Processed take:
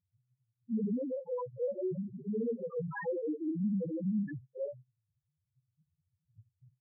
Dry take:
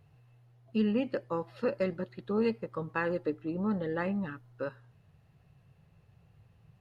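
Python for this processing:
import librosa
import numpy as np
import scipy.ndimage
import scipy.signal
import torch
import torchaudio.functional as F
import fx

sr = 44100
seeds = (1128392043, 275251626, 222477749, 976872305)

y = fx.phase_scramble(x, sr, seeds[0], window_ms=100)
y = fx.leveller(y, sr, passes=5)
y = fx.spec_topn(y, sr, count=1)
y = y * 10.0 ** (-6.0 / 20.0)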